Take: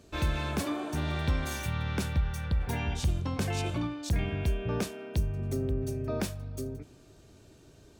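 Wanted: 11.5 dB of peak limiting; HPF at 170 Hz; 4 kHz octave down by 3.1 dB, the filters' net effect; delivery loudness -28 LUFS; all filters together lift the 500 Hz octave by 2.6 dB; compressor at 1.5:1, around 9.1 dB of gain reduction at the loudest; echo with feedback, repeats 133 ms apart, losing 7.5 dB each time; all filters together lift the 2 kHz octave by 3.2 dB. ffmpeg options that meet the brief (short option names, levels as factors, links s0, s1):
-af "highpass=170,equalizer=f=500:t=o:g=3.5,equalizer=f=2000:t=o:g=5.5,equalizer=f=4000:t=o:g=-6,acompressor=threshold=0.00224:ratio=1.5,alimiter=level_in=4.22:limit=0.0631:level=0:latency=1,volume=0.237,aecho=1:1:133|266|399|532|665:0.422|0.177|0.0744|0.0312|0.0131,volume=6.68"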